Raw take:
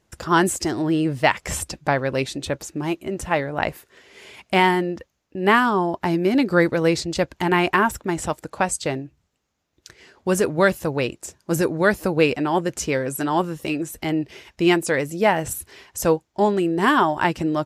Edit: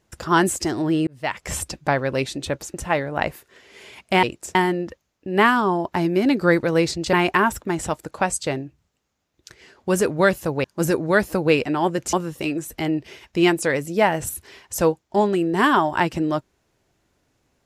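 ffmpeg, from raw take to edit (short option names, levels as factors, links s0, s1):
-filter_complex "[0:a]asplit=8[s0][s1][s2][s3][s4][s5][s6][s7];[s0]atrim=end=1.07,asetpts=PTS-STARTPTS,afade=t=out:st=1.066:d=0.004:c=hsin[s8];[s1]atrim=start=1.07:end=2.742,asetpts=PTS-STARTPTS,afade=t=in:d=0.51[s9];[s2]atrim=start=3.148:end=4.642[s10];[s3]atrim=start=11.028:end=11.352[s11];[s4]atrim=start=4.638:end=7.222[s12];[s5]atrim=start=7.518:end=11.032[s13];[s6]atrim=start=11.348:end=12.842[s14];[s7]atrim=start=13.368[s15];[s8][s9]concat=n=2:v=0:a=1[s16];[s16][s10]acrossfade=d=0.004:c1=hsin:c2=hsin[s17];[s17][s11]acrossfade=d=0.004:c1=hsin:c2=hsin[s18];[s18][s12]acrossfade=d=0.004:c1=hsin:c2=hsin[s19];[s19][s13]acrossfade=d=0.004:c1=hsin:c2=hsin[s20];[s20][s14]acrossfade=d=0.004:c1=hsin:c2=hsin[s21];[s21][s15]acrossfade=d=0.004:c1=hsin:c2=hsin"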